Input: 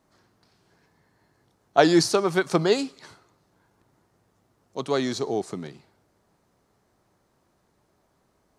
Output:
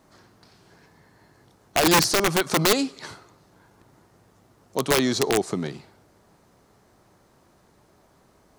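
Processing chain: in parallel at +2.5 dB: compressor 6:1, threshold -33 dBFS, peak gain reduction 19.5 dB; on the sum: limiter -10 dBFS, peak gain reduction 9 dB; wrapped overs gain 13.5 dB; gain +1.5 dB

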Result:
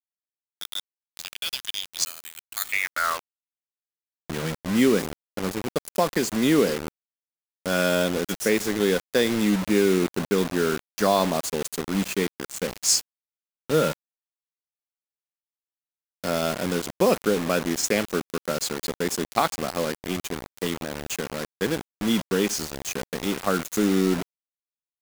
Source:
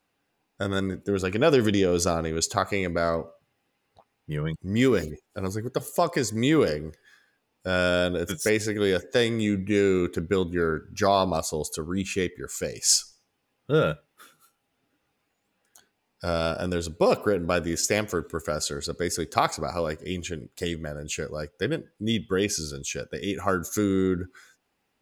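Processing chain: dynamic EQ 140 Hz, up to -5 dB, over -38 dBFS, Q 0.96; high-pass sweep 3700 Hz -> 190 Hz, 2.41–4.3; 2.05–2.72 careless resampling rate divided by 8×, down filtered, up zero stuff; bit-crush 5-bit

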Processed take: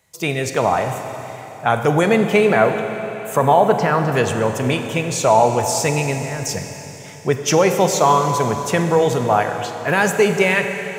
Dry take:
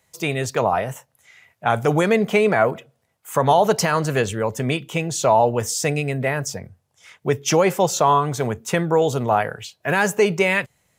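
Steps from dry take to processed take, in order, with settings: 3.43–4.12 LPF 2400 Hz 12 dB/oct; 6.18–6.59 negative-ratio compressor -29 dBFS, ratio -1; Schroeder reverb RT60 3.7 s, combs from 32 ms, DRR 6 dB; gain +2 dB

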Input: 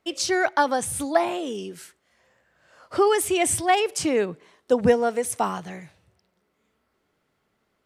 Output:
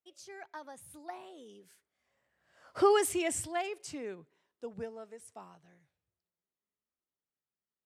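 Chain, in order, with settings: Doppler pass-by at 2.86, 20 m/s, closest 4.8 m; gain -5 dB

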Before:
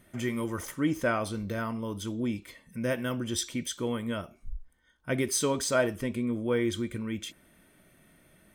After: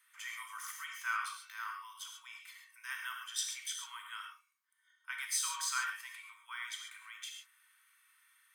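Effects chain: steep high-pass 1000 Hz 72 dB/oct; non-linear reverb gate 0.16 s flat, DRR 1.5 dB; gain -5.5 dB

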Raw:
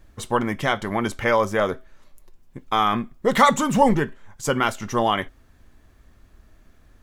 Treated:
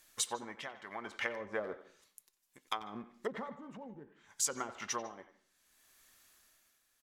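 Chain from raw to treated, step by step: treble ducked by the level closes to 310 Hz, closed at -15.5 dBFS; differentiator; compressor 6:1, threshold -40 dBFS, peak gain reduction 9.5 dB; in parallel at -6 dB: backlash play -56.5 dBFS; on the sum: tremolo 0.65 Hz, depth 71%; speakerphone echo 90 ms, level -13 dB; on a send at -19 dB: reverb RT60 0.45 s, pre-delay 0.147 s; on the sum: gain +7.5 dB

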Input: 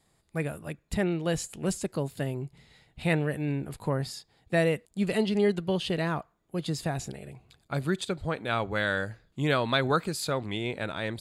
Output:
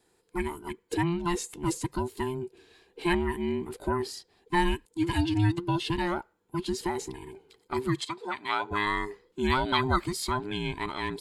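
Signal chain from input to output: band inversion scrambler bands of 500 Hz; 8–8.71 weighting filter A

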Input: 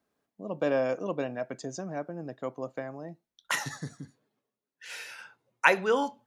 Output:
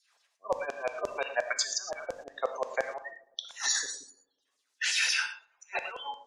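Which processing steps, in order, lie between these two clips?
de-hum 91.54 Hz, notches 5; spectral gate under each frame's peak -25 dB strong; weighting filter ITU-R 468; spectral delete 3.86–4.45, 600–2700 Hz; dynamic EQ 430 Hz, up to +3 dB, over -53 dBFS, Q 7; negative-ratio compressor -35 dBFS, ratio -0.5; LFO high-pass saw down 5.7 Hz 510–6400 Hz; on a send: darkening echo 0.107 s, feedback 70%, low-pass 1200 Hz, level -23 dB; on the sum: non-linear reverb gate 0.14 s flat, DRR 7 dB; gain +1.5 dB

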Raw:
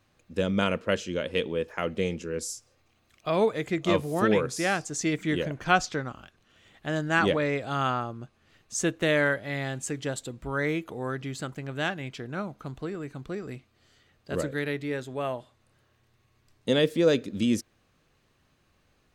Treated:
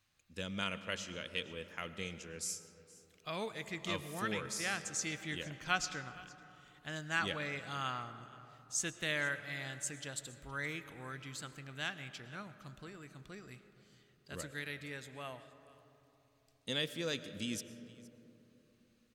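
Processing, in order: passive tone stack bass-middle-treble 5-5-5; echo 0.467 s -21.5 dB; on a send at -12.5 dB: reverb RT60 3.4 s, pre-delay 70 ms; on the sum: gain +2 dB

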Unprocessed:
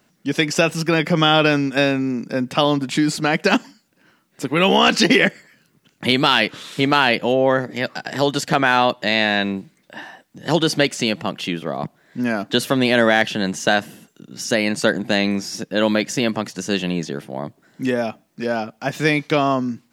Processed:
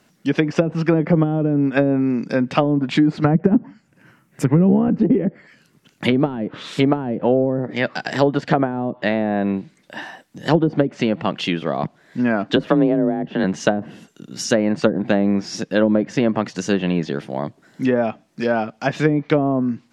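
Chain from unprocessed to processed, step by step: 3.24–4.99 graphic EQ 125/2000/4000 Hz +12/+4/-9 dB; treble ducked by the level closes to 320 Hz, closed at -11.5 dBFS; 12.56–13.44 frequency shift +30 Hz; gain +3 dB

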